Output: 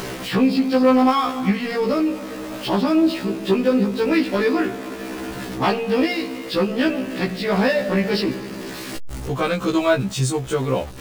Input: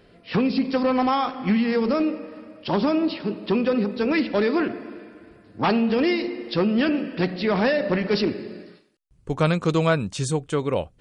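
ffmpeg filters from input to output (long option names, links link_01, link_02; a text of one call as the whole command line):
ffmpeg -i in.wav -af "aeval=exprs='val(0)+0.5*0.0237*sgn(val(0))':channel_layout=same,acompressor=mode=upward:threshold=-27dB:ratio=2.5,afftfilt=real='re*1.73*eq(mod(b,3),0)':imag='im*1.73*eq(mod(b,3),0)':win_size=2048:overlap=0.75,volume=4dB" out.wav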